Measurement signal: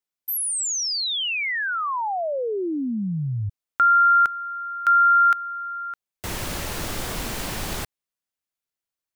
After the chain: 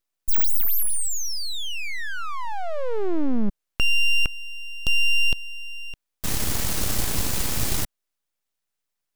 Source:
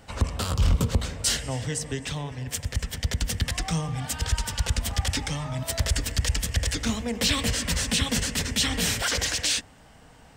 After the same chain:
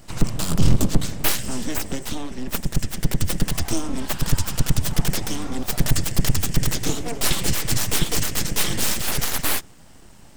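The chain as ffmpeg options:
-af "bass=f=250:g=9,treble=f=4000:g=9,aeval=exprs='abs(val(0))':c=same"

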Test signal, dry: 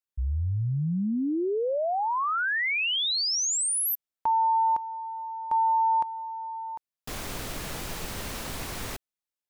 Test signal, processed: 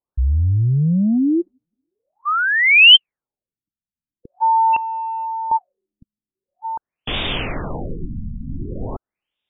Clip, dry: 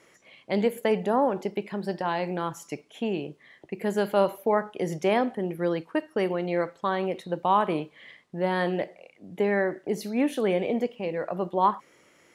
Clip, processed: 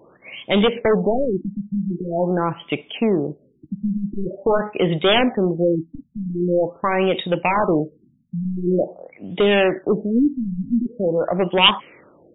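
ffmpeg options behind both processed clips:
-af "aeval=exprs='0.355*sin(PI/2*3.16*val(0)/0.355)':c=same,highshelf=f=2300:t=q:w=1.5:g=9,afftfilt=real='re*lt(b*sr/1024,250*pow(3800/250,0.5+0.5*sin(2*PI*0.45*pts/sr)))':imag='im*lt(b*sr/1024,250*pow(3800/250,0.5+0.5*sin(2*PI*0.45*pts/sr)))':win_size=1024:overlap=0.75,volume=0.794"

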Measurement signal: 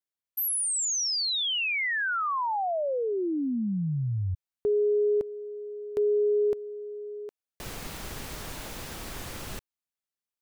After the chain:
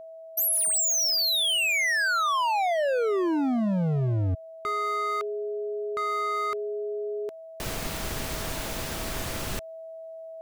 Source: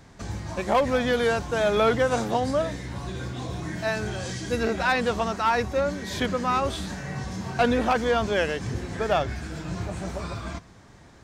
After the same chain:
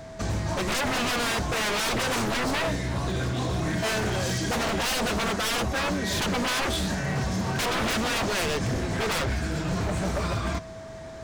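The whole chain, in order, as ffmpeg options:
-af "acontrast=54,aeval=exprs='0.0841*(abs(mod(val(0)/0.0841+3,4)-2)-1)':c=same,aeval=exprs='val(0)+0.00891*sin(2*PI*650*n/s)':c=same,areverse,acompressor=mode=upward:threshold=0.0224:ratio=1.5:release=783:knee=2.83:detection=peak,areverse"

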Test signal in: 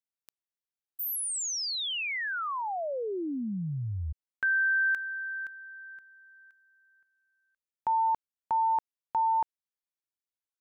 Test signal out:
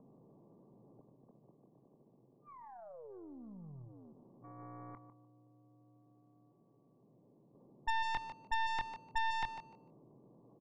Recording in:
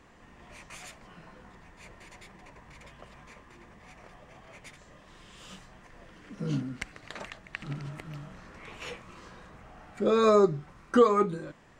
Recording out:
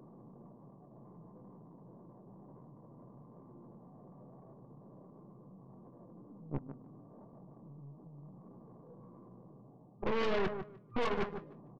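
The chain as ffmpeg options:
-filter_complex "[0:a]aeval=exprs='val(0)+0.5*0.0631*sgn(val(0))':c=same,agate=range=0.00794:threshold=0.0794:ratio=16:release=32:detection=rms,afftfilt=real='re*between(b*sr/4096,110,1200)':imag='im*between(b*sr/4096,110,1200)':win_size=4096:overlap=0.75,lowshelf=f=260:g=6,alimiter=limit=0.188:level=0:latency=1:release=326,areverse,acompressor=threshold=0.0282:ratio=8:attack=4.2:release=716:knee=6:detection=rms,areverse,asoftclip=type=tanh:threshold=0.0119,acrossover=split=500[s0][s1];[s0]acompressor=mode=upward:threshold=0.00141:ratio=2.5:attack=6.2:release=30:knee=2.83:detection=peak[s2];[s1]asplit=2[s3][s4];[s4]adelay=24,volume=0.447[s5];[s3][s5]amix=inputs=2:normalize=0[s6];[s2][s6]amix=inputs=2:normalize=0,aecho=1:1:150|300|450:0.316|0.0632|0.0126,aeval=exprs='0.0282*(cos(1*acos(clip(val(0)/0.0282,-1,1)))-cos(1*PI/2))+0.00631*(cos(4*acos(clip(val(0)/0.0282,-1,1)))-cos(4*PI/2))+0.00316*(cos(5*acos(clip(val(0)/0.0282,-1,1)))-cos(5*PI/2))+0.0126*(cos(6*acos(clip(val(0)/0.0282,-1,1)))-cos(6*PI/2))':c=same,volume=1.88"

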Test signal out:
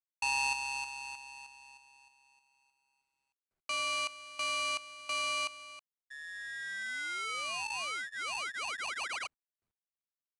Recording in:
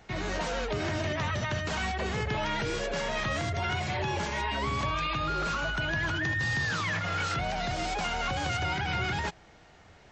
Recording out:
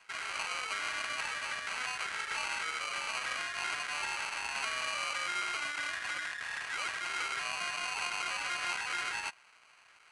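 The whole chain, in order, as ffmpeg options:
-af "acrusher=samples=25:mix=1:aa=0.000001,highpass=f=1700:t=q:w=3.9" -ar 22050 -c:a adpcm_ima_wav

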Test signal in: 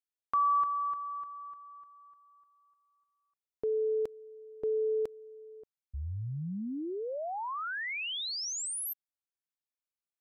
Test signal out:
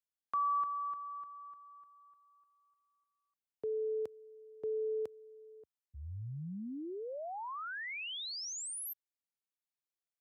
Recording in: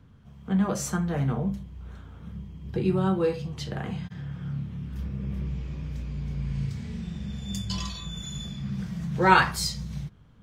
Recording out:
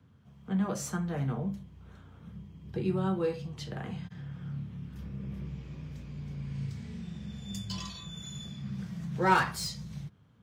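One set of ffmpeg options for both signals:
-filter_complex "[0:a]highpass=f=75:w=0.5412,highpass=f=75:w=1.3066,acrossover=split=490|1500[s0][s1][s2];[s2]asoftclip=type=hard:threshold=0.0501[s3];[s0][s1][s3]amix=inputs=3:normalize=0,volume=0.531"

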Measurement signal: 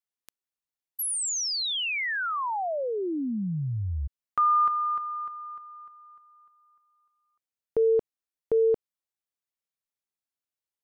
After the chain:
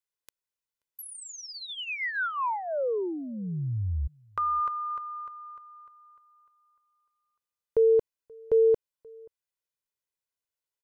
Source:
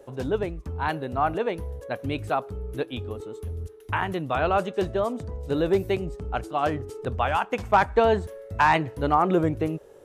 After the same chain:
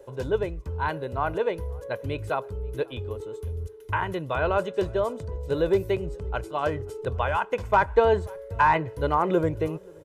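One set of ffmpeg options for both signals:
-filter_complex "[0:a]aecho=1:1:2:0.5,asplit=2[s0][s1];[s1]adelay=530.6,volume=0.0447,highshelf=f=4000:g=-11.9[s2];[s0][s2]amix=inputs=2:normalize=0,acrossover=split=2300[s3][s4];[s4]acompressor=threshold=0.00891:ratio=6:attack=16:release=193:detection=rms[s5];[s3][s5]amix=inputs=2:normalize=0,volume=0.841"

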